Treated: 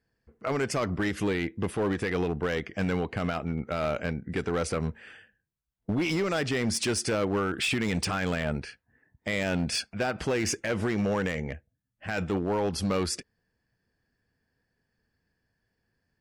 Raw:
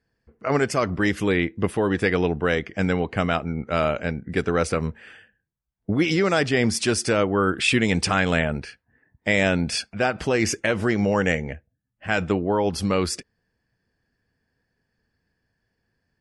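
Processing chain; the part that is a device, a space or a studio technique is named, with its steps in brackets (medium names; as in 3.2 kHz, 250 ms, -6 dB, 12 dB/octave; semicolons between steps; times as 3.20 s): limiter into clipper (peak limiter -14 dBFS, peak gain reduction 7.5 dB; hard clipper -19 dBFS, distortion -16 dB); trim -3 dB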